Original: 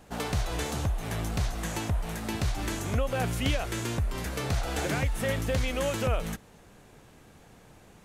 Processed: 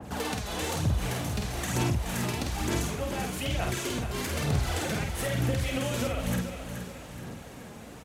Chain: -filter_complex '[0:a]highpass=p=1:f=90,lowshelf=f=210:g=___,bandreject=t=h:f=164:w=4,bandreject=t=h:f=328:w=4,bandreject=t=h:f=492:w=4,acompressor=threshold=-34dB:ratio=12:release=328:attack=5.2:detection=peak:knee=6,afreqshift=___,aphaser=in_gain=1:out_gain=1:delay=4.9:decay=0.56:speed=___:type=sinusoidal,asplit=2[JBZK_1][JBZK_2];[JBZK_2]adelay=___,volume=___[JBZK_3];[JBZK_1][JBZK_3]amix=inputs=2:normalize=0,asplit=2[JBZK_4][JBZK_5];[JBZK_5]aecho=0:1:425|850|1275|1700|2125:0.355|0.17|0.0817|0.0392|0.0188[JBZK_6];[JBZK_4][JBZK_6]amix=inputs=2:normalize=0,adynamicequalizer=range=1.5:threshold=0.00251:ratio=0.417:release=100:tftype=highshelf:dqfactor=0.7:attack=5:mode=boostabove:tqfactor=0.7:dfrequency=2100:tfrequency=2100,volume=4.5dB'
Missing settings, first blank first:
6, 15, 1.1, 49, -3.5dB